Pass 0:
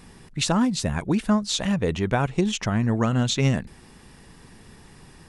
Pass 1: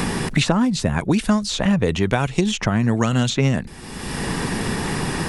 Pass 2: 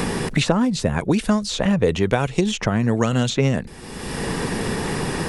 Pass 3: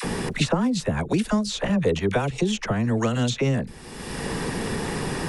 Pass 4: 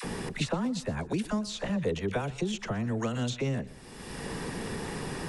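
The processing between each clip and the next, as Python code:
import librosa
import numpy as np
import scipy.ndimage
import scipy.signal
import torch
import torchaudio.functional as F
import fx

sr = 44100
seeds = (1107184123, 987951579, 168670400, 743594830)

y1 = fx.band_squash(x, sr, depth_pct=100)
y1 = y1 * 10.0 ** (3.5 / 20.0)
y2 = fx.peak_eq(y1, sr, hz=480.0, db=5.5, octaves=0.68)
y2 = y2 * 10.0 ** (-1.5 / 20.0)
y3 = fx.dispersion(y2, sr, late='lows', ms=43.0, hz=630.0)
y3 = y3 * 10.0 ** (-3.5 / 20.0)
y4 = fx.echo_feedback(y3, sr, ms=121, feedback_pct=41, wet_db=-19)
y4 = y4 * 10.0 ** (-8.0 / 20.0)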